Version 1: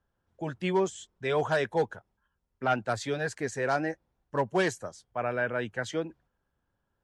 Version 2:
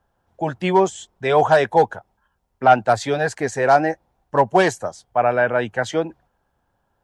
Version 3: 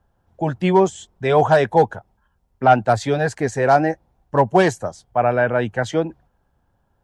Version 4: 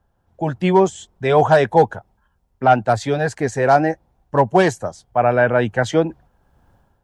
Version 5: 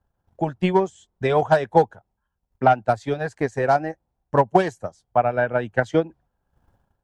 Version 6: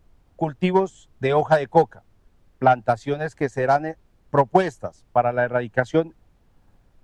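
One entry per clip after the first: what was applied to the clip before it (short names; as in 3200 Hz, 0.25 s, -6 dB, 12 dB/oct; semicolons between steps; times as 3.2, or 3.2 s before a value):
bell 770 Hz +9 dB 0.78 oct; gain +8 dB
low shelf 280 Hz +9 dB; gain -1.5 dB
AGC gain up to 12.5 dB; gain -1 dB
transient shaper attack +9 dB, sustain -6 dB; gain -8.5 dB
added noise brown -56 dBFS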